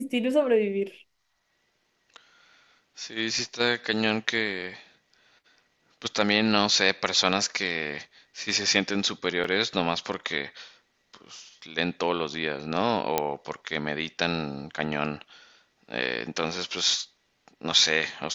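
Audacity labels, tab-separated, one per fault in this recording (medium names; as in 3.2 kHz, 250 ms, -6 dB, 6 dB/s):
9.440000	9.440000	dropout 3.8 ms
13.180000	13.180000	pop -7 dBFS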